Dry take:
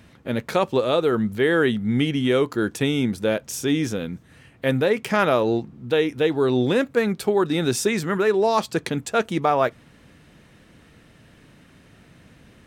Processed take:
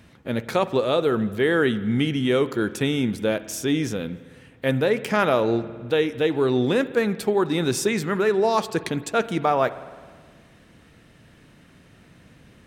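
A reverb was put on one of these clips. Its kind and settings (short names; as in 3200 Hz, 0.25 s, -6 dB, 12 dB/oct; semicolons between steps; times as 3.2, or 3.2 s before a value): spring tank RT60 1.7 s, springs 52 ms, chirp 35 ms, DRR 14.5 dB; gain -1 dB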